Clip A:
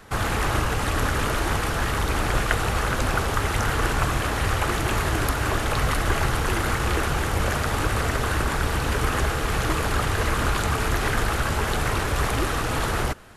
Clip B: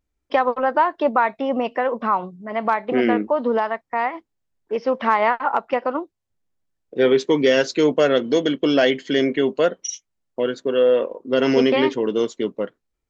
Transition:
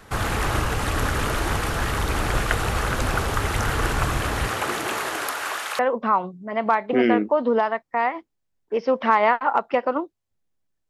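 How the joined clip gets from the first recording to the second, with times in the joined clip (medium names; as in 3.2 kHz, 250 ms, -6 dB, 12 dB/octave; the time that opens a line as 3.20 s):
clip A
4.46–5.79 s: high-pass 160 Hz -> 1.2 kHz
5.79 s: go over to clip B from 1.78 s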